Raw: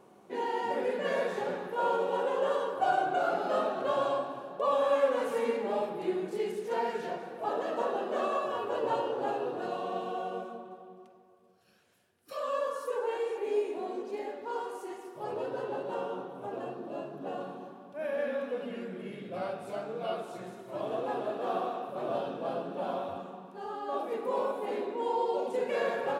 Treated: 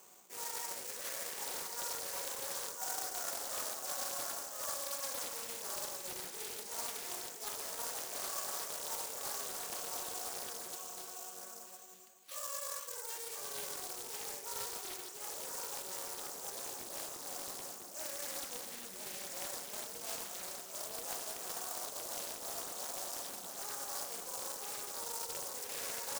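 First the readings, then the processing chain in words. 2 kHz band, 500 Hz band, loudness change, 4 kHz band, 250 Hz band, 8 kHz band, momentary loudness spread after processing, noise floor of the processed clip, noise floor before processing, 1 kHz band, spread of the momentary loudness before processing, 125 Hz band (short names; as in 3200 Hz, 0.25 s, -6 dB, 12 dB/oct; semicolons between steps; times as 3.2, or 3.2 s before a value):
-7.5 dB, -18.0 dB, -6.5 dB, +4.0 dB, -18.0 dB, n/a, 5 LU, -49 dBFS, -58 dBFS, -13.5 dB, 11 LU, -13.5 dB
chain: bell 140 Hz +9 dB 1.5 oct; sample-and-hold 6×; reverse; compressor 6:1, threshold -38 dBFS, peak gain reduction 17 dB; reverse; differentiator; notches 50/100/150/200/250/300/350/400/450/500 Hz; on a send: echo 1.013 s -4 dB; on the sum: Doppler distortion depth 0.68 ms; gain +12.5 dB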